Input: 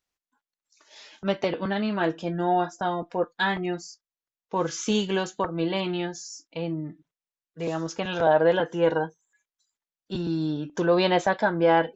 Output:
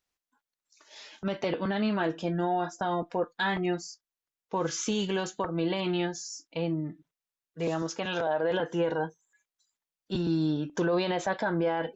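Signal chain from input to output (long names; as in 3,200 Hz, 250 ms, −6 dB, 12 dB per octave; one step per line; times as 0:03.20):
brickwall limiter −19 dBFS, peak gain reduction 11.5 dB
0:07.82–0:08.51: high-pass filter 200 Hz 6 dB per octave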